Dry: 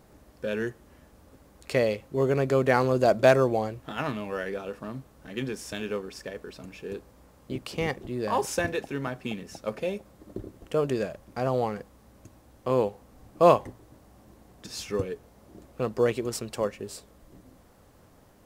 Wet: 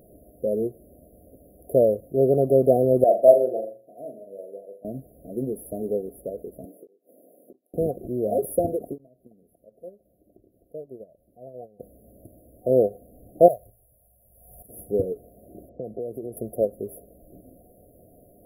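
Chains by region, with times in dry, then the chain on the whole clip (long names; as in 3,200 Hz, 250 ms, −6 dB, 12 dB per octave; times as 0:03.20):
0:03.04–0:04.85: meter weighting curve A + flutter between parallel walls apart 6.9 metres, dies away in 0.49 s + expander for the loud parts, over −43 dBFS
0:06.65–0:07.74: high-pass filter 250 Hz 24 dB per octave + gate with flip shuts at −28 dBFS, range −31 dB
0:08.98–0:11.80: downward compressor 2.5 to 1, threshold −47 dBFS + noise gate −43 dBFS, range −14 dB
0:13.48–0:14.69: guitar amp tone stack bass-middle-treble 10-0-10 + floating-point word with a short mantissa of 4 bits + background raised ahead of every attack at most 43 dB per second
0:15.69–0:16.37: low-pass that shuts in the quiet parts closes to 680 Hz, open at −23.5 dBFS + high-pass filter 55 Hz 24 dB per octave + downward compressor 10 to 1, threshold −33 dBFS
whole clip: brick-wall band-stop 740–10,000 Hz; low-shelf EQ 310 Hz −9 dB; every ending faded ahead of time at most 380 dB per second; level +9 dB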